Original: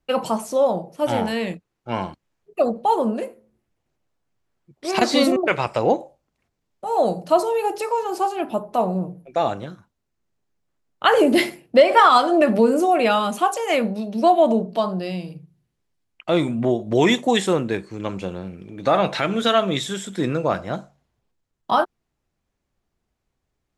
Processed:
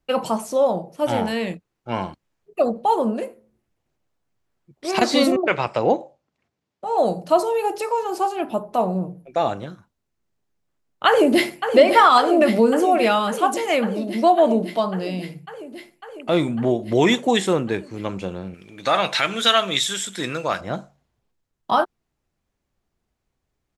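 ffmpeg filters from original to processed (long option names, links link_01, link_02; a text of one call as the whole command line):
ffmpeg -i in.wav -filter_complex "[0:a]asettb=1/sr,asplit=3[link_01][link_02][link_03];[link_01]atrim=end=5.354[link_04];[link_02]atrim=start=5.35:end=6.98,asetpts=PTS-STARTPTS,afade=type=in:duration=0.004:curve=qsin,afade=type=out:start_time=1.626:duration=0.004:curve=qsin,highpass=100,lowpass=6300[link_05];[link_03]atrim=start=6.976[link_06];[link_04][link_05]acrossfade=duration=0.004:curve1=hsin:curve2=qsin[link_07];[link_07][link_06]acrossfade=duration=0.004:curve1=qsin:curve2=hsin,asplit=2[link_08][link_09];[link_09]afade=type=in:start_time=11.07:duration=0.01,afade=type=out:start_time=11.61:duration=0.01,aecho=0:1:550|1100|1650|2200|2750|3300|3850|4400|4950|5500|6050|6600:0.421697|0.337357|0.269886|0.215909|0.172727|0.138182|0.110545|0.0884362|0.0707489|0.0565991|0.0452793|0.0362235[link_10];[link_08][link_10]amix=inputs=2:normalize=0,asettb=1/sr,asplit=3[link_11][link_12][link_13];[link_11]atrim=end=18.544[link_14];[link_12]atrim=start=18.54:end=20.61,asetpts=PTS-STARTPTS,afade=type=in:duration=0.004:curve=qsin,afade=type=out:start_time=2.066:duration=0.004:curve=qsin,tiltshelf=frequency=970:gain=-8[link_15];[link_13]atrim=start=20.606[link_16];[link_14][link_15]acrossfade=duration=0.004:curve1=hsin:curve2=qsin[link_17];[link_17][link_16]acrossfade=duration=0.004:curve1=qsin:curve2=hsin" out.wav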